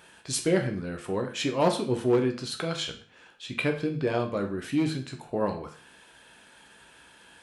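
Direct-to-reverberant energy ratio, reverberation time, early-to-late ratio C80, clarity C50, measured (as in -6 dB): 3.0 dB, 0.45 s, 15.0 dB, 10.5 dB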